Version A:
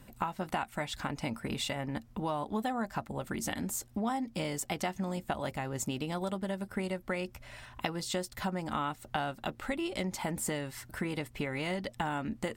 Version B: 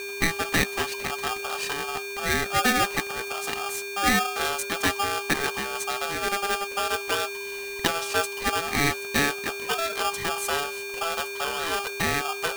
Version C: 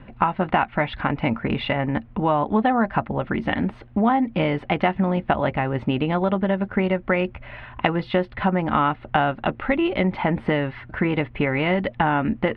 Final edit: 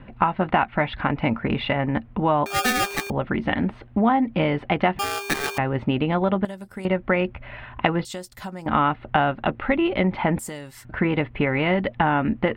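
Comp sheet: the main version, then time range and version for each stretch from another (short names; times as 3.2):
C
2.46–3.1 from B
4.99–5.58 from B
6.45–6.85 from A
8.05–8.66 from A
10.39–10.85 from A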